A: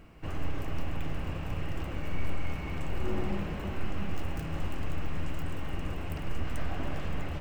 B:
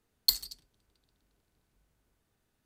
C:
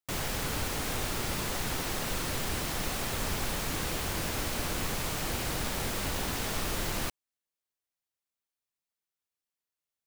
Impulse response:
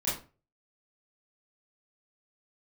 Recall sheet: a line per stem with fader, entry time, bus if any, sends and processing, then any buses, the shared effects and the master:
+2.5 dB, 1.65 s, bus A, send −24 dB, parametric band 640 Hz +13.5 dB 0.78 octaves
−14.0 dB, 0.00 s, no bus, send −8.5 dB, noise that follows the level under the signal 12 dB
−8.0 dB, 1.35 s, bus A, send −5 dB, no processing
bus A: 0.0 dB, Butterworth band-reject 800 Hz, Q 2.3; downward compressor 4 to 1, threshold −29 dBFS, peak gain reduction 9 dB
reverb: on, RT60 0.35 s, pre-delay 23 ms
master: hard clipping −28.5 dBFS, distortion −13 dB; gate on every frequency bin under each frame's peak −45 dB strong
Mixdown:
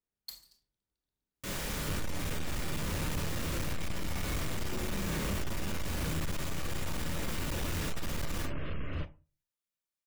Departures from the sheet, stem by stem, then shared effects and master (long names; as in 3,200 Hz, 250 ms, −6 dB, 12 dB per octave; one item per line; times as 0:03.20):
stem A: missing parametric band 640 Hz +13.5 dB 0.78 octaves
stem B −14.0 dB → −22.0 dB